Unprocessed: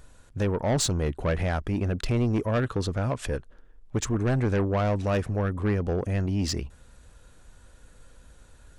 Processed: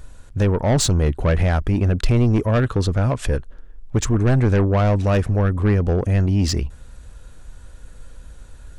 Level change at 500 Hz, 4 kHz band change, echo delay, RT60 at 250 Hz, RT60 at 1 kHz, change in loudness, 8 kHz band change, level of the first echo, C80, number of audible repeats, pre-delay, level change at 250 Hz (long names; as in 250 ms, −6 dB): +6.0 dB, +5.5 dB, no echo audible, no reverb audible, no reverb audible, +8.0 dB, +5.5 dB, no echo audible, no reverb audible, no echo audible, no reverb audible, +7.0 dB